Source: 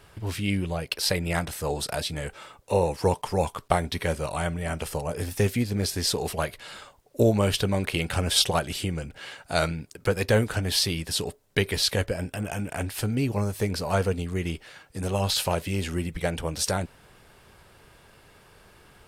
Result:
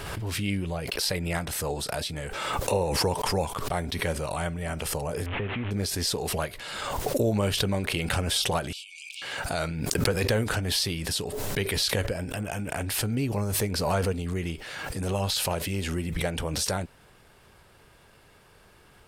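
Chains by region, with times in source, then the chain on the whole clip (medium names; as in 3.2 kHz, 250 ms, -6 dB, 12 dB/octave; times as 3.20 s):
5.26–5.71 s: one-bit delta coder 16 kbps, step -25.5 dBFS + compression 2:1, threshold -30 dBFS
8.73–9.22 s: distance through air 50 m + compression 2:1, threshold -34 dBFS + brick-wall FIR high-pass 2.2 kHz
whole clip: loudness maximiser +12 dB; swell ahead of each attack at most 29 dB/s; trim -14.5 dB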